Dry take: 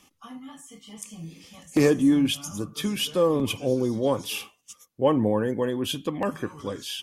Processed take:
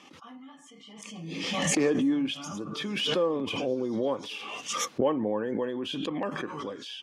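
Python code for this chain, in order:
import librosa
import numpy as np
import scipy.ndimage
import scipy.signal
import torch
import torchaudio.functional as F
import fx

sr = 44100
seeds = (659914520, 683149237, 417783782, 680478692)

y = fx.bandpass_edges(x, sr, low_hz=230.0, high_hz=3900.0)
y = fx.pre_swell(y, sr, db_per_s=29.0)
y = y * 10.0 ** (-5.0 / 20.0)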